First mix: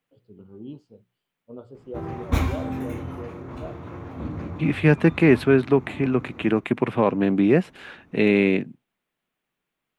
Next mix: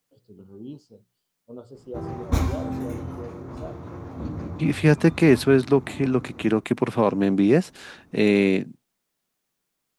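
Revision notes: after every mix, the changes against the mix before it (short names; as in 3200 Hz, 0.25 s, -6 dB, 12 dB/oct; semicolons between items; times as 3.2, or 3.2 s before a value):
background: add high shelf 3200 Hz -11 dB; master: add resonant high shelf 3800 Hz +10 dB, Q 1.5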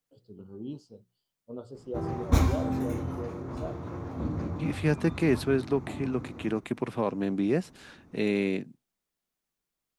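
second voice -8.5 dB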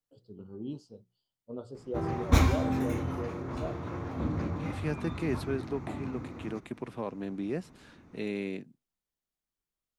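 second voice -7.5 dB; background: add bell 2400 Hz +6 dB 1.9 oct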